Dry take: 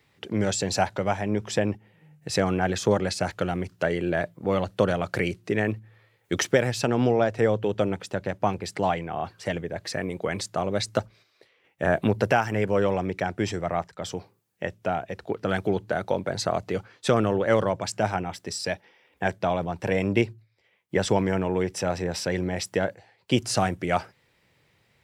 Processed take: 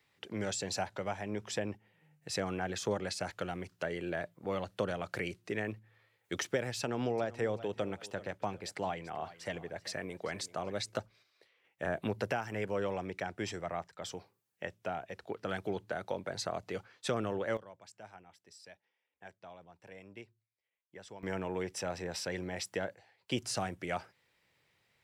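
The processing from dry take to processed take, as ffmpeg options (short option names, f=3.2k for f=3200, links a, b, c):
-filter_complex "[0:a]asettb=1/sr,asplit=3[a][b][c];[a]atrim=end=6.794[d];[b]atrim=start=6.79:end=10.97,asetpts=PTS-STARTPTS,afade=t=in:d=0.004:c=qsin,afade=t=out:st=4.176:d=0.004:c=qsin,aecho=1:1:387|774:0.126|0.034,atrim=end_sample=184338[e];[c]atrim=start=10.966[f];[d][e]acrossfade=d=0.004:c1=hsin:c2=qsin[g];[g][f]acrossfade=d=0.004:c1=qsin:c2=hsin,asplit=3[h][i][j];[h]atrim=end=17.57,asetpts=PTS-STARTPTS,afade=t=out:st=17.38:d=0.19:c=log:silence=0.141254[k];[i]atrim=start=17.57:end=21.23,asetpts=PTS-STARTPTS,volume=-17dB[l];[j]atrim=start=21.23,asetpts=PTS-STARTPTS,afade=t=in:d=0.19:c=log:silence=0.141254[m];[k][l][m]concat=n=3:v=0:a=1,acrossover=split=500[n][o];[o]acompressor=threshold=-28dB:ratio=2.5[p];[n][p]amix=inputs=2:normalize=0,lowshelf=f=480:g=-7.5,volume=-6.5dB"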